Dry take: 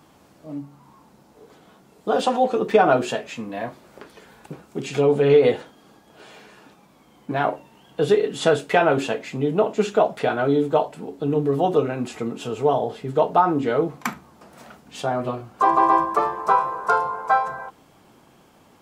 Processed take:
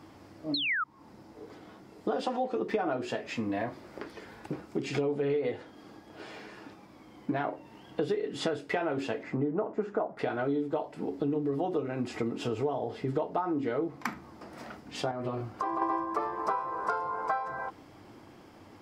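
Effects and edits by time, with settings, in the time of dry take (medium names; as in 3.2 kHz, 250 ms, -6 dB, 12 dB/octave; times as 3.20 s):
0.54–0.84 s: painted sound fall 1.2–4.4 kHz -14 dBFS
9.23–10.19 s: resonant high shelf 2.1 kHz -13.5 dB, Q 1.5
15.11–15.82 s: compression 2.5:1, threshold -30 dBFS
whole clip: graphic EQ with 31 bands 100 Hz +9 dB, 160 Hz -4 dB, 315 Hz +7 dB, 2 kHz +5 dB, 5 kHz +8 dB; compression 6:1, threshold -28 dBFS; treble shelf 3.8 kHz -9 dB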